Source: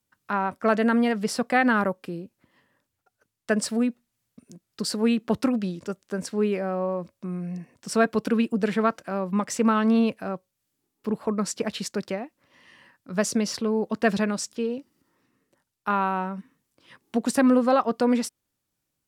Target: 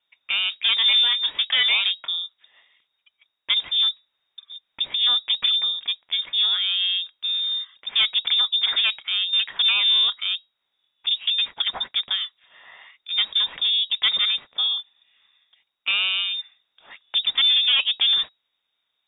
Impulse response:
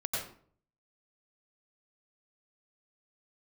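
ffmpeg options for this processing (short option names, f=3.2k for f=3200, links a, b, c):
-filter_complex "[0:a]asplit=2[a][b];[b]acompressor=threshold=-29dB:ratio=6,volume=-1dB[c];[a][c]amix=inputs=2:normalize=0,asoftclip=type=tanh:threshold=-16dB,asettb=1/sr,asplit=3[d][e][f];[d]atrim=end=0.804[g];[e]atrim=start=0.8:end=2.1,asetpts=PTS-STARTPTS,afade=t=in:d=0.004:c=qsin,afade=t=out:st=1.296:d=0.004:c=qsin,asplit=2[h][i];[i]adelay=22,volume=-9.5dB[j];[h][j]amix=inputs=2:normalize=0,atrim=end_sample=57330[k];[f]atrim=start=2.096[l];[g][k]acrossfade=d=0.004:c1=hsin:c2=qsin[m];[m][l]acrossfade=d=0.004:c1=qsin:c2=hsin,lowpass=f=3.2k:t=q:w=0.5098,lowpass=f=3.2k:t=q:w=0.6013,lowpass=f=3.2k:t=q:w=0.9,lowpass=f=3.2k:t=q:w=2.563,afreqshift=-3800,volume=2dB"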